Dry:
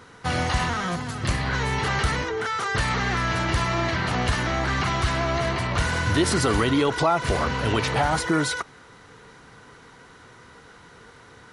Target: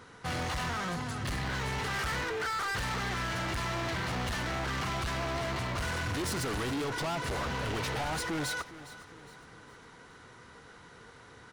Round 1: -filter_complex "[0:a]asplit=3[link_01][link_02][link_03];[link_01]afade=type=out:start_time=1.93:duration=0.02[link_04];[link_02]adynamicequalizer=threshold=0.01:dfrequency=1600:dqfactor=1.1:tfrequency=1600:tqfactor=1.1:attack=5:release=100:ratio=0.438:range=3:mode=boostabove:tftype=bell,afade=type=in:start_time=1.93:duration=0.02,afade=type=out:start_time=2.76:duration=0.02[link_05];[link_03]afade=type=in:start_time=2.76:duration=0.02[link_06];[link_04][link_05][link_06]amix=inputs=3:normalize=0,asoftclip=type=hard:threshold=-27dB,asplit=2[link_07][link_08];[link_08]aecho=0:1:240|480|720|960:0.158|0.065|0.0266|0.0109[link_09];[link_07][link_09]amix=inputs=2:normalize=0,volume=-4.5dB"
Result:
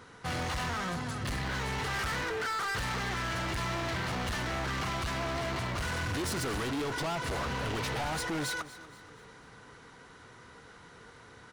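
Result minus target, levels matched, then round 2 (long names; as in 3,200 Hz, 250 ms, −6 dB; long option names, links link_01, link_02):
echo 170 ms early
-filter_complex "[0:a]asplit=3[link_01][link_02][link_03];[link_01]afade=type=out:start_time=1.93:duration=0.02[link_04];[link_02]adynamicequalizer=threshold=0.01:dfrequency=1600:dqfactor=1.1:tfrequency=1600:tqfactor=1.1:attack=5:release=100:ratio=0.438:range=3:mode=boostabove:tftype=bell,afade=type=in:start_time=1.93:duration=0.02,afade=type=out:start_time=2.76:duration=0.02[link_05];[link_03]afade=type=in:start_time=2.76:duration=0.02[link_06];[link_04][link_05][link_06]amix=inputs=3:normalize=0,asoftclip=type=hard:threshold=-27dB,asplit=2[link_07][link_08];[link_08]aecho=0:1:410|820|1230|1640:0.158|0.065|0.0266|0.0109[link_09];[link_07][link_09]amix=inputs=2:normalize=0,volume=-4.5dB"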